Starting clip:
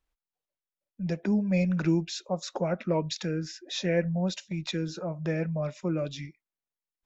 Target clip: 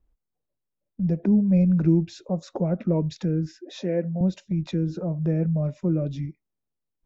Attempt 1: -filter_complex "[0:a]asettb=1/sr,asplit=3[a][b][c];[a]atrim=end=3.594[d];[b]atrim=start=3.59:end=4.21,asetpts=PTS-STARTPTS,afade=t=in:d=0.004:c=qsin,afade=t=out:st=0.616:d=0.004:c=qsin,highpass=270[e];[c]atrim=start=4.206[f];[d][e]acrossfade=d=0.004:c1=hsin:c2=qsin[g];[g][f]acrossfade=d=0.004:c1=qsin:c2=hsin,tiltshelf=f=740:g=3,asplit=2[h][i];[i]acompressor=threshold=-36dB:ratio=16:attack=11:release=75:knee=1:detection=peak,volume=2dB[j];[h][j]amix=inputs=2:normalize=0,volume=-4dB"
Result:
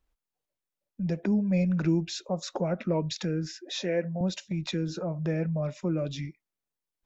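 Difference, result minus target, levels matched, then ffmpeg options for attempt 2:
1000 Hz band +7.0 dB
-filter_complex "[0:a]asettb=1/sr,asplit=3[a][b][c];[a]atrim=end=3.594[d];[b]atrim=start=3.59:end=4.21,asetpts=PTS-STARTPTS,afade=t=in:d=0.004:c=qsin,afade=t=out:st=0.616:d=0.004:c=qsin,highpass=270[e];[c]atrim=start=4.206[f];[d][e]acrossfade=d=0.004:c1=hsin:c2=qsin[g];[g][f]acrossfade=d=0.004:c1=qsin:c2=hsin,tiltshelf=f=740:g=12,asplit=2[h][i];[i]acompressor=threshold=-36dB:ratio=16:attack=11:release=75:knee=1:detection=peak,volume=2dB[j];[h][j]amix=inputs=2:normalize=0,volume=-4dB"

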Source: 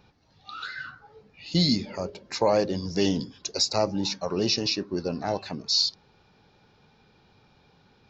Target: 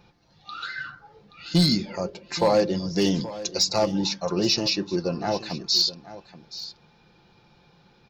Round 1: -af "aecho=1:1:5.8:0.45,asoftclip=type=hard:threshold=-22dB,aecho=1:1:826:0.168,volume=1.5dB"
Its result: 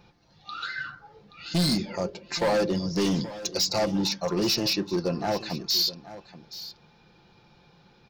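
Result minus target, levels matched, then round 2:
hard clip: distortion +12 dB
-af "aecho=1:1:5.8:0.45,asoftclip=type=hard:threshold=-14.5dB,aecho=1:1:826:0.168,volume=1.5dB"

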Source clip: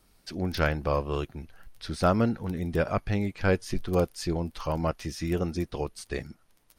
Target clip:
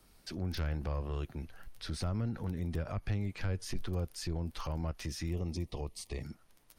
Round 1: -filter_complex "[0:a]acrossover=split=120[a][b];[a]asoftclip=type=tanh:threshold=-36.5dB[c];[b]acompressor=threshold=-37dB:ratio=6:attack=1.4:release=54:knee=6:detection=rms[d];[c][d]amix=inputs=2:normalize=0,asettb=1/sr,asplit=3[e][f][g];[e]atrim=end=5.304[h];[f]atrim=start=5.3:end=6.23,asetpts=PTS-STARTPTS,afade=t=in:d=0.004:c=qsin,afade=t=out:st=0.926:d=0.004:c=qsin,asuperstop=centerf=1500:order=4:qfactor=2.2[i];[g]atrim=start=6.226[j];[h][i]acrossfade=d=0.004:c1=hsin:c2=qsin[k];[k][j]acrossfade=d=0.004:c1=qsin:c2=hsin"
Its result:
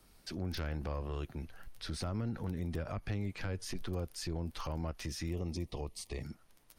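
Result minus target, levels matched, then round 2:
soft clip: distortion +7 dB
-filter_complex "[0:a]acrossover=split=120[a][b];[a]asoftclip=type=tanh:threshold=-28dB[c];[b]acompressor=threshold=-37dB:ratio=6:attack=1.4:release=54:knee=6:detection=rms[d];[c][d]amix=inputs=2:normalize=0,asettb=1/sr,asplit=3[e][f][g];[e]atrim=end=5.304[h];[f]atrim=start=5.3:end=6.23,asetpts=PTS-STARTPTS,afade=t=in:d=0.004:c=qsin,afade=t=out:st=0.926:d=0.004:c=qsin,asuperstop=centerf=1500:order=4:qfactor=2.2[i];[g]atrim=start=6.226[j];[h][i]acrossfade=d=0.004:c1=hsin:c2=qsin[k];[k][j]acrossfade=d=0.004:c1=qsin:c2=hsin"

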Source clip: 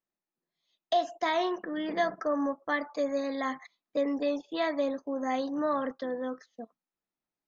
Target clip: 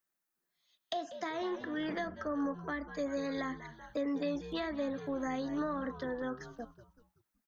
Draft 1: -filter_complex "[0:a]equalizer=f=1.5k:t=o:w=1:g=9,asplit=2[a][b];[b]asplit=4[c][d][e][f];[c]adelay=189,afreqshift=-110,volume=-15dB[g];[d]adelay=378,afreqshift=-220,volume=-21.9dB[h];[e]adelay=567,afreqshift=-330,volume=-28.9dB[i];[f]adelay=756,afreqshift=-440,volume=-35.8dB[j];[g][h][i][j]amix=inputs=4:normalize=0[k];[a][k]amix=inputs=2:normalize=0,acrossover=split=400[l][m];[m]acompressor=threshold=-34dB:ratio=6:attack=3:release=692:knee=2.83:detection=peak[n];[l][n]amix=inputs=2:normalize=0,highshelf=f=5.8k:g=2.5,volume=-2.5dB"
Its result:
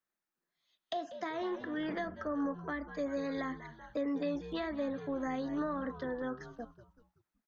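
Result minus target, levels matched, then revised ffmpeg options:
8000 Hz band -6.0 dB
-filter_complex "[0:a]equalizer=f=1.5k:t=o:w=1:g=9,asplit=2[a][b];[b]asplit=4[c][d][e][f];[c]adelay=189,afreqshift=-110,volume=-15dB[g];[d]adelay=378,afreqshift=-220,volume=-21.9dB[h];[e]adelay=567,afreqshift=-330,volume=-28.9dB[i];[f]adelay=756,afreqshift=-440,volume=-35.8dB[j];[g][h][i][j]amix=inputs=4:normalize=0[k];[a][k]amix=inputs=2:normalize=0,acrossover=split=400[l][m];[m]acompressor=threshold=-34dB:ratio=6:attack=3:release=692:knee=2.83:detection=peak[n];[l][n]amix=inputs=2:normalize=0,highshelf=f=5.8k:g=13.5,volume=-2.5dB"

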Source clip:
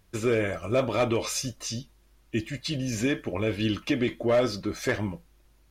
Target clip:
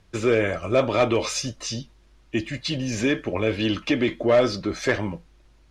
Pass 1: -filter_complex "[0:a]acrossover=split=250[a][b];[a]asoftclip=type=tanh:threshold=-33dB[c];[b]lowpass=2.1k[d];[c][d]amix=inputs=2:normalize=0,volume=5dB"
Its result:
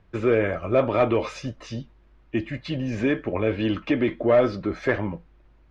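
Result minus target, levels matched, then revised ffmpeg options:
8000 Hz band -17.0 dB
-filter_complex "[0:a]acrossover=split=250[a][b];[a]asoftclip=type=tanh:threshold=-33dB[c];[b]lowpass=6.4k[d];[c][d]amix=inputs=2:normalize=0,volume=5dB"

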